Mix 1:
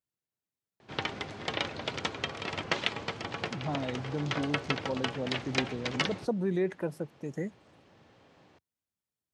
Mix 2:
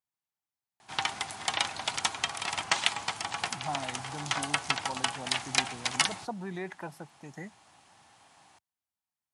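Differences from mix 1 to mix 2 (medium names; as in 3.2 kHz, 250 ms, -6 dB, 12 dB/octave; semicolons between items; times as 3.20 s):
background: remove distance through air 180 m; master: add resonant low shelf 630 Hz -7 dB, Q 3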